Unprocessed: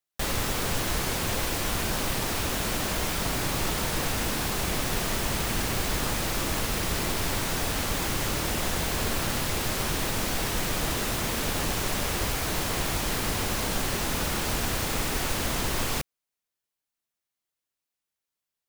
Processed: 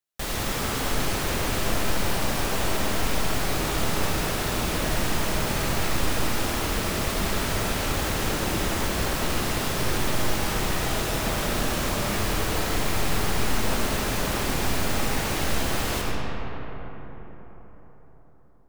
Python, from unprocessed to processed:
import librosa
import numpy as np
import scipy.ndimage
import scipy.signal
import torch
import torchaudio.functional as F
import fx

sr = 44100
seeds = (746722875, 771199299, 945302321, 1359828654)

y = fx.rev_freeverb(x, sr, rt60_s=4.7, hf_ratio=0.4, predelay_ms=35, drr_db=-2.5)
y = F.gain(torch.from_numpy(y), -2.0).numpy()